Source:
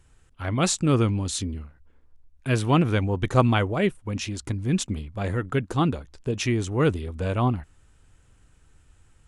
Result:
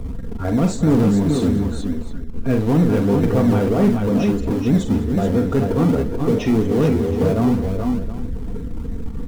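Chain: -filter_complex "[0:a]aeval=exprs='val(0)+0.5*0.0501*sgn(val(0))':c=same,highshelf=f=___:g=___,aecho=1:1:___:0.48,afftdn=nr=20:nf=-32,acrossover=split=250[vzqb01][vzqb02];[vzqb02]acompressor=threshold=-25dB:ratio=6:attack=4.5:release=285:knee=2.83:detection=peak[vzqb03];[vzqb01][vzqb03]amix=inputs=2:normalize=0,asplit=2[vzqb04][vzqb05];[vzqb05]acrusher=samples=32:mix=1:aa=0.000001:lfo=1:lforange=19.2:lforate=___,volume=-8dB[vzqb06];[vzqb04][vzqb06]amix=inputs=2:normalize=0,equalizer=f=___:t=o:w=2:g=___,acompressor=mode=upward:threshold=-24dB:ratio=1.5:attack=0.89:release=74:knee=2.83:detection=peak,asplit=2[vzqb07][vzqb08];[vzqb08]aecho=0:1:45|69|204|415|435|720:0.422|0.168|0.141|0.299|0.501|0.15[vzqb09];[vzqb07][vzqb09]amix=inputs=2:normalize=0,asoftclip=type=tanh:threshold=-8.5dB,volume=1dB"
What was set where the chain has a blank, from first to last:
2000, -10, 4.3, 3.1, 420, 7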